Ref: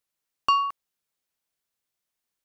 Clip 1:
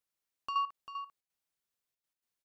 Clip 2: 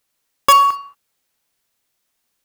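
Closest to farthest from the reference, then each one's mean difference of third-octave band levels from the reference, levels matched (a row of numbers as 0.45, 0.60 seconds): 1, 2; 3.5, 8.0 decibels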